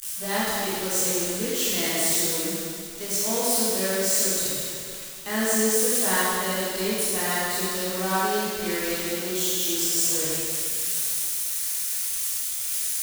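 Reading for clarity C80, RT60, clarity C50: -2.0 dB, 2.3 s, -4.5 dB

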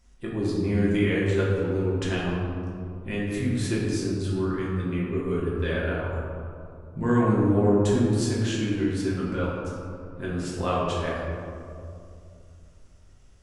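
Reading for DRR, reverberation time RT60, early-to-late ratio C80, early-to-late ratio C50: -6.5 dB, 2.5 s, 1.0 dB, -1.0 dB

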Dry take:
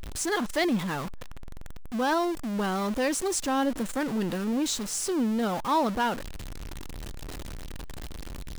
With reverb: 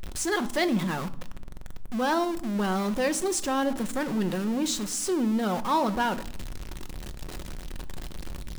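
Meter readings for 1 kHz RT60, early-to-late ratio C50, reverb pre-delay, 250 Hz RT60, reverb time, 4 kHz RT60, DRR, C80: 0.65 s, 18.0 dB, 5 ms, 1.3 s, 0.75 s, 0.45 s, 10.5 dB, 21.0 dB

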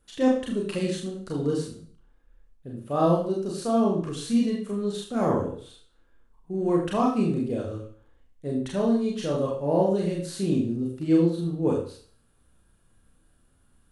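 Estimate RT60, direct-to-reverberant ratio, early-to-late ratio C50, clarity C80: 0.45 s, -3.0 dB, 5.5 dB, 8.5 dB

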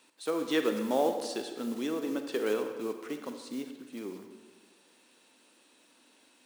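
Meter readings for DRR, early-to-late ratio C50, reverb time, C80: 6.0 dB, 7.0 dB, 1.4 s, 8.5 dB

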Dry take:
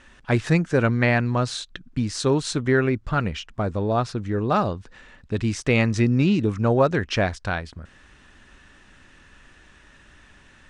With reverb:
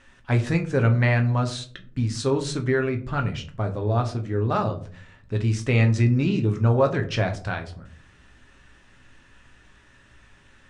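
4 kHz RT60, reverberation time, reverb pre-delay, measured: 0.25 s, 0.50 s, 7 ms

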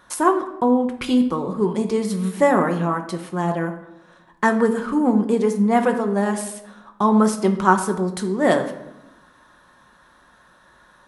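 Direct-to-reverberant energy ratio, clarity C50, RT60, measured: 4.5 dB, 10.5 dB, 0.90 s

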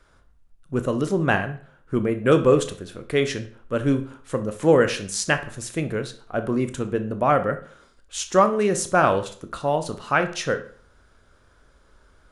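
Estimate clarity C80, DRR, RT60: 18.0 dB, 8.5 dB, 0.50 s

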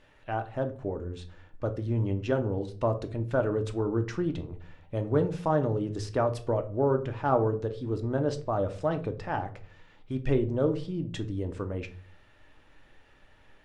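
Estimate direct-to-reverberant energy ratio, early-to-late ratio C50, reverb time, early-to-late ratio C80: 6.0 dB, 15.0 dB, 0.45 s, 19.5 dB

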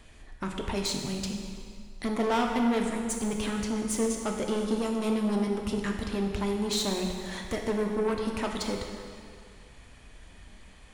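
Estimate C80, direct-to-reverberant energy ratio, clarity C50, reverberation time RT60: 4.5 dB, 1.0 dB, 3.0 dB, 2.2 s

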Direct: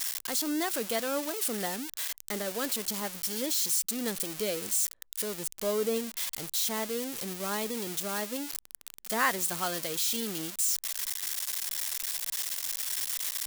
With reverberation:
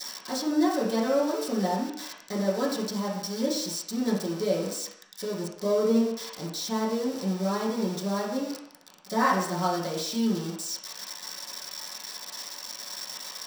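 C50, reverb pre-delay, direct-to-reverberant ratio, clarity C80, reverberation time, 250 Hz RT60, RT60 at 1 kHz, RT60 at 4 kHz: 4.0 dB, 3 ms, -8.5 dB, 6.5 dB, 0.70 s, 0.55 s, 0.75 s, 0.70 s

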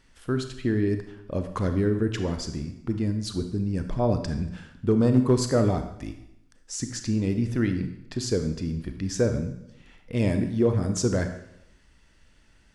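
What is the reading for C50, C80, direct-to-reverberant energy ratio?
8.5 dB, 11.5 dB, 7.0 dB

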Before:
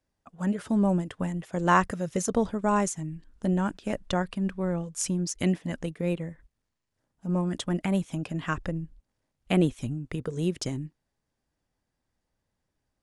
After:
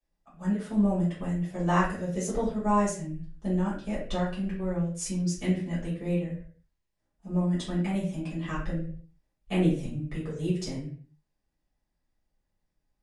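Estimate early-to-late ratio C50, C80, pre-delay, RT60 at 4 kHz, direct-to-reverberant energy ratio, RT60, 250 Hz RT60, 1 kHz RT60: 4.5 dB, 9.0 dB, 3 ms, 0.40 s, -10.0 dB, 0.50 s, 0.50 s, 0.45 s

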